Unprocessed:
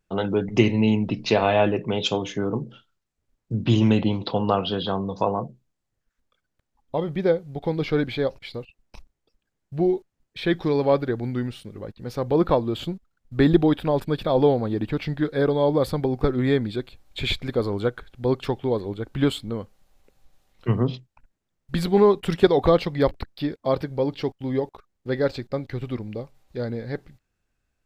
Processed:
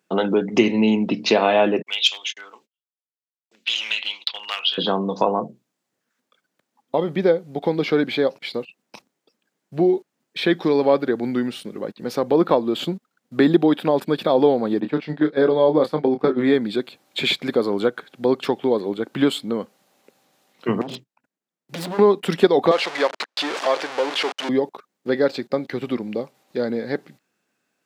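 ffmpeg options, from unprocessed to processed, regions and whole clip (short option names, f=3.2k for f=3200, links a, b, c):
-filter_complex "[0:a]asettb=1/sr,asplit=3[a][b][c];[a]atrim=end=1.824[d];[b]atrim=start=1.82:end=4.78,asetpts=PTS-STARTPTS,afade=t=in:d=0.004:c=qsin,afade=t=out:st=2.956:d=0.004:c=qsin,aeval=exprs='clip(val(0),-1,0.141)':c=same,agate=range=-55dB:threshold=-35dB:ratio=16:release=100:detection=peak,highpass=f=2.6k:t=q:w=1.8[e];[c]atrim=start=4.776[f];[d][e]acrossfade=d=0.004:c1=hsin:c2=qsin[g];[g][f]acrossfade=d=0.004:c1=qsin:c2=hsin,asettb=1/sr,asplit=3[h][i][j];[h]atrim=end=14.804[k];[i]atrim=start=14.8:end=16.54,asetpts=PTS-STARTPTS,afade=t=in:d=0.004:c=qsin,afade=t=out:st=1.736:d=0.004:c=qsin,agate=range=-10dB:threshold=-26dB:ratio=16:release=100:detection=peak,highshelf=f=7k:g=-12,asplit=2[l][m];[m]adelay=26,volume=-8dB[n];[l][n]amix=inputs=2:normalize=0,atrim=end_sample=76734[o];[j]atrim=start=16.536[p];[k][o]acrossfade=d=0.004:c1=hsin:c2=qsin[q];[q][p]acrossfade=d=0.004:c1=qsin:c2=hsin,asettb=1/sr,asplit=3[r][s][t];[r]atrim=end=20.814[u];[s]atrim=start=20.81:end=21.99,asetpts=PTS-STARTPTS,afade=t=in:d=0.004:c=qsin,afade=t=out:st=1.176:d=0.004:c=qsin,agate=range=-14dB:threshold=-49dB:ratio=16:release=100:detection=peak,acompressor=threshold=-26dB:ratio=12:attack=3.2:release=140:knee=1:detection=peak,aeval=exprs='0.0316*(abs(mod(val(0)/0.0316+3,4)-2)-1)':c=same[v];[t]atrim=start=21.986[w];[u][v]acrossfade=d=0.004:c1=hsin:c2=qsin[x];[x][w]acrossfade=d=0.004:c1=qsin:c2=hsin,asettb=1/sr,asplit=3[y][z][aa];[y]atrim=end=22.714[ab];[z]atrim=start=22.71:end=24.49,asetpts=PTS-STARTPTS,afade=t=in:d=0.004:c=qsin,afade=t=out:st=1.776:d=0.004:c=qsin,aeval=exprs='val(0)+0.5*0.0631*sgn(val(0))':c=same,highpass=660,lowpass=4.8k[ac];[aa]atrim=start=24.486[ad];[ab][ac]acrossfade=d=0.004:c1=hsin:c2=qsin[ae];[ae][ad]acrossfade=d=0.004:c1=qsin:c2=hsin,highpass=f=190:w=0.5412,highpass=f=190:w=1.3066,acompressor=threshold=-29dB:ratio=1.5,volume=8dB"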